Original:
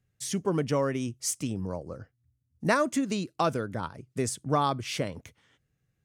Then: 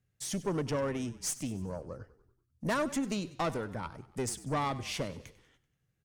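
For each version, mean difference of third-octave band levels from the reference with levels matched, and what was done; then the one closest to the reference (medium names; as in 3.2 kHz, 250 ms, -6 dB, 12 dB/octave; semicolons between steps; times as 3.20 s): 5.5 dB: valve stage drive 24 dB, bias 0.4; frequency-shifting echo 96 ms, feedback 52%, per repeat -34 Hz, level -17 dB; trim -1.5 dB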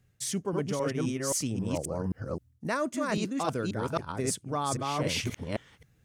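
8.0 dB: chunks repeated in reverse 265 ms, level -0.5 dB; reverse; compression 6:1, threshold -36 dBFS, peak gain reduction 16 dB; reverse; trim +8 dB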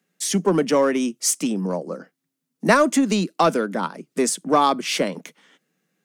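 3.5 dB: steep high-pass 170 Hz 72 dB/octave; in parallel at -8.5 dB: overload inside the chain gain 28 dB; on the sum: trim +7.5 dB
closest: third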